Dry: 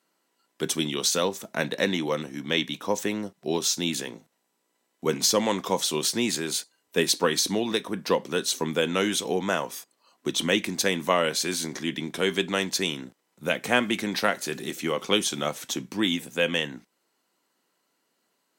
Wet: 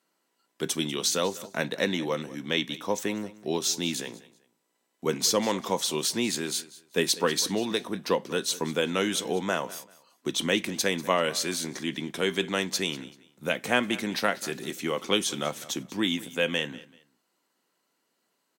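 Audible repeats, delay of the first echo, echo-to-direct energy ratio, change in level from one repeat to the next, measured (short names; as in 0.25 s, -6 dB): 2, 0.193 s, -18.5 dB, -11.5 dB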